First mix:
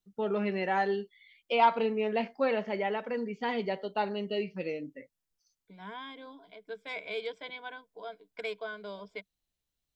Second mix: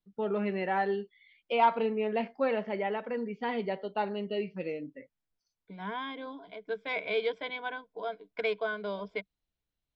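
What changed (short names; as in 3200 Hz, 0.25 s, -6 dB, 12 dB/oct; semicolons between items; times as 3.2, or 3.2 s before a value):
second voice +7.0 dB; master: add air absorption 180 m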